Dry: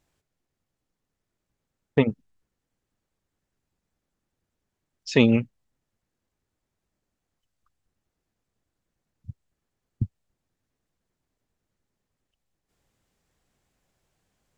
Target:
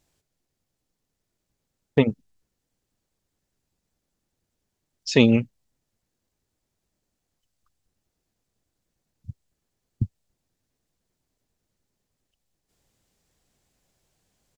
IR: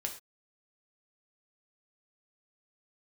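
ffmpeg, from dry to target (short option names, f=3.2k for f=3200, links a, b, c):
-af "firequalizer=gain_entry='entry(640,0);entry(1200,-3);entry(4500,4)':delay=0.05:min_phase=1,volume=1.5dB"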